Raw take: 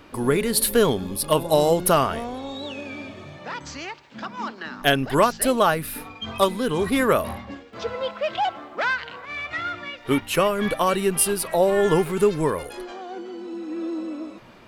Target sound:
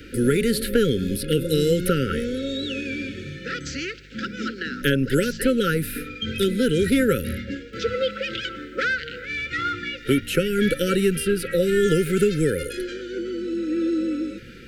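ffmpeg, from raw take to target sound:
-filter_complex "[0:a]afftfilt=real='re*(1-between(b*sr/4096,550,1300))':imag='im*(1-between(b*sr/4096,550,1300))':win_size=4096:overlap=0.75,acrossover=split=230|1300|3200[a][b][c][d];[a]acompressor=threshold=-29dB:ratio=4[e];[b]acompressor=threshold=-27dB:ratio=4[f];[c]acompressor=threshold=-39dB:ratio=4[g];[d]acompressor=threshold=-41dB:ratio=4[h];[e][f][g][h]amix=inputs=4:normalize=0,aeval=exprs='val(0)+0.00158*(sin(2*PI*50*n/s)+sin(2*PI*2*50*n/s)/2+sin(2*PI*3*50*n/s)/3+sin(2*PI*4*50*n/s)/4+sin(2*PI*5*50*n/s)/5)':c=same,volume=6.5dB"

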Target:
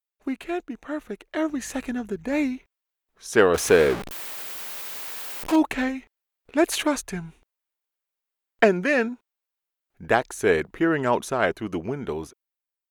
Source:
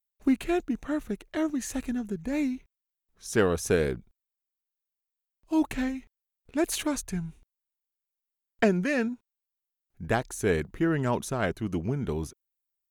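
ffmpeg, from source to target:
-filter_complex "[0:a]asettb=1/sr,asplit=3[a][b][c];[a]atrim=end=3.544[d];[b]atrim=start=3.54:end=5.56,asetpts=PTS-STARTPTS,afade=t=in:d=0.004:c=qsin,afade=t=out:st=2.016:d=0.004:c=qsin,aeval=exprs='val(0)+0.5*0.0355*sgn(val(0))':c=same[e];[c]atrim=start=5.556[f];[d][e]acrossfade=d=0.004:c1=hsin:c2=qsin[g];[g][f]acrossfade=d=0.004:c1=qsin:c2=hsin,bass=f=250:g=-13,treble=f=4k:g=-7,dynaudnorm=f=400:g=7:m=9dB,asettb=1/sr,asplit=3[h][i][j];[h]atrim=end=1.504[k];[i]atrim=start=1.5:end=2.54,asetpts=PTS-STARTPTS,afade=t=in:d=0.004:c=qsin,afade=t=out:st=1.036:d=0.004:c=qsin,aeval=exprs='val(0)+0.00224*(sin(2*PI*50*n/s)+sin(2*PI*2*50*n/s)/2+sin(2*PI*3*50*n/s)/3+sin(2*PI*4*50*n/s)/4+sin(2*PI*5*50*n/s)/5)':c=same[l];[j]atrim=start=2.536[m];[k][l]acrossfade=d=0.004:c1=hsin:c2=qsin[n];[n][m]acrossfade=d=0.004:c1=qsin:c2=hsin"

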